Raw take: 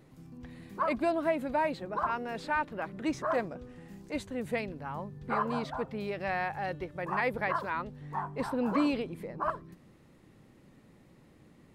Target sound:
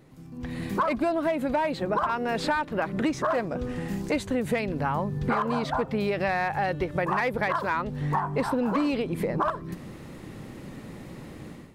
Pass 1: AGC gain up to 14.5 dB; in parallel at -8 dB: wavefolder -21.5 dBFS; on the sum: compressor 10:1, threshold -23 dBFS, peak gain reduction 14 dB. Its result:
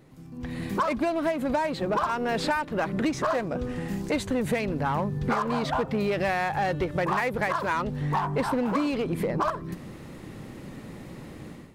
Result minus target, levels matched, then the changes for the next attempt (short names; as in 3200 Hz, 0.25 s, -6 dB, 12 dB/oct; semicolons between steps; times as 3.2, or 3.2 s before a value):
wavefolder: distortion +21 dB
change: wavefolder -11 dBFS